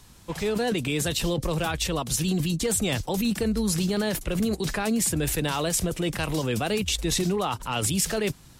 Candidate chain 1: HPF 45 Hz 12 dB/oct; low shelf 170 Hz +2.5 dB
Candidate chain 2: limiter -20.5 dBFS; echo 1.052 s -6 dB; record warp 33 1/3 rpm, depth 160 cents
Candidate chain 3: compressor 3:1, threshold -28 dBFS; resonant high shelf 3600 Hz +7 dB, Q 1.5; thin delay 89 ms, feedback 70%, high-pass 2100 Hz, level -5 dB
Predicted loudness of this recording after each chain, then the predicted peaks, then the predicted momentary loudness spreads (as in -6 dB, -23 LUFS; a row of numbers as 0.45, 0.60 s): -25.5, -28.5, -25.0 LUFS; -11.5, -17.0, -9.0 dBFS; 3, 2, 7 LU